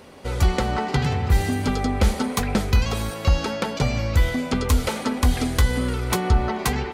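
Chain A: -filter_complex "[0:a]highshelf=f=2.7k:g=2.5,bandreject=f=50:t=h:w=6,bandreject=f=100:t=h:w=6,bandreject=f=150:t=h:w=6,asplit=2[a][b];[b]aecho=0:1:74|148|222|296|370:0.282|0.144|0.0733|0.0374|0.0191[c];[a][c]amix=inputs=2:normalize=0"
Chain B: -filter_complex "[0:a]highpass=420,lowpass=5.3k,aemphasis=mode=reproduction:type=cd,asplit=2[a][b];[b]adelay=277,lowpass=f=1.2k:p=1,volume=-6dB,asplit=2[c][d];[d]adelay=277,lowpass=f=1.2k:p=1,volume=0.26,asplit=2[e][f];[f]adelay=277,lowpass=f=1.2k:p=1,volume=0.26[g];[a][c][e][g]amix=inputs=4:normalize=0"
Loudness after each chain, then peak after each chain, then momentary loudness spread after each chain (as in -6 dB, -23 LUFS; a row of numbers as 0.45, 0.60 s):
-22.5, -29.0 LUFS; -7.0, -9.5 dBFS; 3, 3 LU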